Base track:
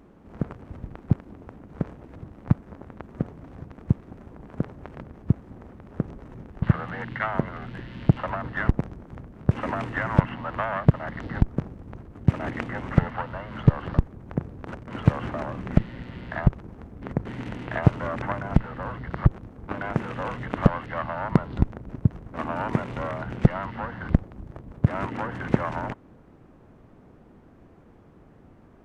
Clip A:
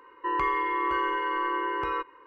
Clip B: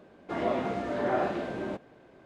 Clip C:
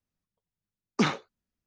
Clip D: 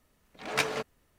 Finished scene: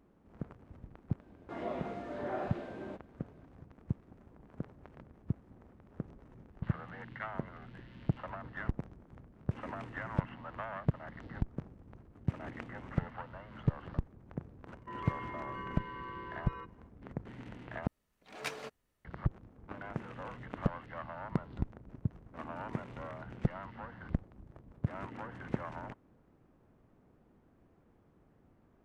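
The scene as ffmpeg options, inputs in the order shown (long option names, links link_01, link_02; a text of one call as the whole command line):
ffmpeg -i bed.wav -i cue0.wav -i cue1.wav -i cue2.wav -i cue3.wav -filter_complex "[0:a]volume=-13.5dB[link_01];[2:a]equalizer=frequency=6500:width_type=o:width=2.4:gain=-3.5[link_02];[link_01]asplit=2[link_03][link_04];[link_03]atrim=end=17.874[link_05];[4:a]atrim=end=1.18,asetpts=PTS-STARTPTS,volume=-11.5dB[link_06];[link_04]atrim=start=19.046[link_07];[link_02]atrim=end=2.25,asetpts=PTS-STARTPTS,volume=-9.5dB,afade=type=in:duration=0.004:curve=hsin,afade=type=out:start_time=2.246:duration=0.004:curve=hsin,adelay=1200[link_08];[1:a]atrim=end=2.26,asetpts=PTS-STARTPTS,volume=-16.5dB,afade=type=in:duration=0.004:curve=hsin,afade=type=out:start_time=2.256:duration=0.004:curve=hsin,adelay=14630[link_09];[link_05][link_06]acrossfade=duration=0.004:curve1=hsin:curve2=hsin[link_10];[link_10][link_07]acrossfade=duration=0.004:curve1=hsin:curve2=hsin[link_11];[link_11][link_08][link_09]amix=inputs=3:normalize=0" out.wav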